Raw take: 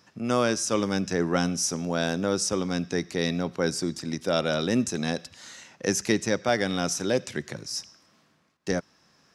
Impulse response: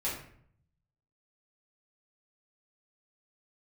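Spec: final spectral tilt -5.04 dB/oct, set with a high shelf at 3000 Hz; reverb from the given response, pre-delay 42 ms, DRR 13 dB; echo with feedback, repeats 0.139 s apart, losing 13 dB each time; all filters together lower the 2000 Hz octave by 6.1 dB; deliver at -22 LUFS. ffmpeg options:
-filter_complex "[0:a]equalizer=f=2k:t=o:g=-6.5,highshelf=f=3k:g=-5,aecho=1:1:139|278|417:0.224|0.0493|0.0108,asplit=2[a][b];[1:a]atrim=start_sample=2205,adelay=42[c];[b][c]afir=irnorm=-1:irlink=0,volume=-18dB[d];[a][d]amix=inputs=2:normalize=0,volume=6dB"

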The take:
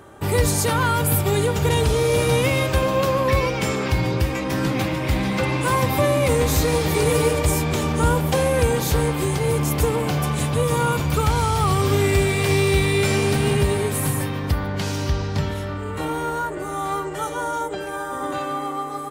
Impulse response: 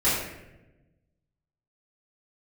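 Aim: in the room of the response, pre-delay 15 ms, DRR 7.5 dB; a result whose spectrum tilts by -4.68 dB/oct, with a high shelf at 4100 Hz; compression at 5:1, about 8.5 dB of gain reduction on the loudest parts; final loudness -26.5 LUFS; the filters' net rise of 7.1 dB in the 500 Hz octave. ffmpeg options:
-filter_complex "[0:a]equalizer=f=500:t=o:g=8,highshelf=f=4.1k:g=8,acompressor=threshold=-19dB:ratio=5,asplit=2[a][b];[1:a]atrim=start_sample=2205,adelay=15[c];[b][c]afir=irnorm=-1:irlink=0,volume=-22.5dB[d];[a][d]amix=inputs=2:normalize=0,volume=-5dB"

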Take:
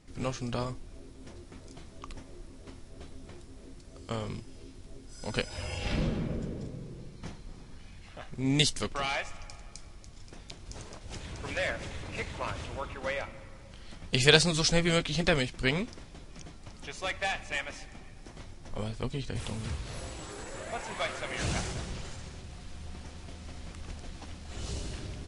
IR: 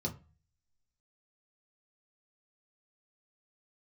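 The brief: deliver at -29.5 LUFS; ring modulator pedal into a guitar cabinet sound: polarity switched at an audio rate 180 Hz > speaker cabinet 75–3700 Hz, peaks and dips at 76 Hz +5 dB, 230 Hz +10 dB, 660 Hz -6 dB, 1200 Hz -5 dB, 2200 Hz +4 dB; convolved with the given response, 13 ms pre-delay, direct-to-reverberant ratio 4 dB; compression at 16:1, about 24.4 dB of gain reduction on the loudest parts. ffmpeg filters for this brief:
-filter_complex "[0:a]acompressor=threshold=-40dB:ratio=16,asplit=2[a][b];[1:a]atrim=start_sample=2205,adelay=13[c];[b][c]afir=irnorm=-1:irlink=0,volume=-6dB[d];[a][d]amix=inputs=2:normalize=0,aeval=exprs='val(0)*sgn(sin(2*PI*180*n/s))':c=same,highpass=75,equalizer=f=76:t=q:w=4:g=5,equalizer=f=230:t=q:w=4:g=10,equalizer=f=660:t=q:w=4:g=-6,equalizer=f=1.2k:t=q:w=4:g=-5,equalizer=f=2.2k:t=q:w=4:g=4,lowpass=f=3.7k:w=0.5412,lowpass=f=3.7k:w=1.3066,volume=10.5dB"

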